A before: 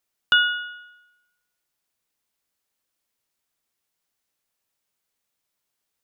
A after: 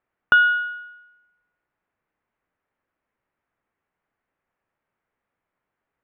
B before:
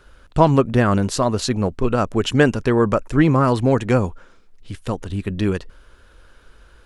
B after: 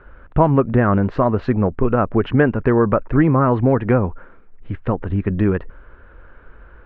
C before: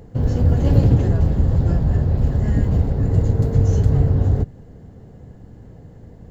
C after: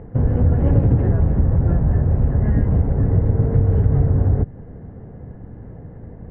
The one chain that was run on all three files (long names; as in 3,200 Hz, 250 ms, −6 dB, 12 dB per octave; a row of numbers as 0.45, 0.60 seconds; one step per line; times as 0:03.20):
low-pass filter 2,000 Hz 24 dB per octave
downward compressor 2 to 1, threshold −20 dBFS
loudness normalisation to −18 LKFS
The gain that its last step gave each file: +7.0, +5.5, +4.5 decibels